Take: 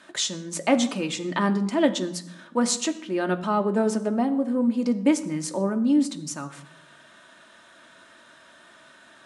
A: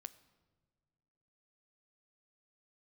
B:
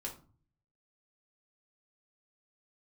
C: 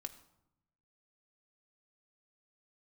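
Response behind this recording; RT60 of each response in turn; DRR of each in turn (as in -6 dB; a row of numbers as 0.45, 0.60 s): C; not exponential, 0.40 s, 0.85 s; 13.5, -1.5, 5.0 dB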